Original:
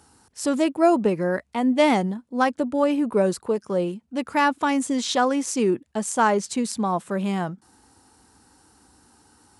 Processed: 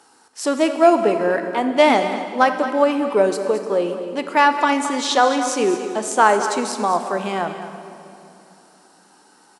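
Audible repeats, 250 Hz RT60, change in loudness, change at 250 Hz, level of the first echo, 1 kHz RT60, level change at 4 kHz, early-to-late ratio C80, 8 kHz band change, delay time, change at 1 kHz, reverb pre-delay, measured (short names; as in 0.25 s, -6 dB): 1, 3.7 s, +4.5 dB, 0.0 dB, -12.0 dB, 2.7 s, +5.5 dB, 7.5 dB, +3.0 dB, 0.218 s, +6.5 dB, 19 ms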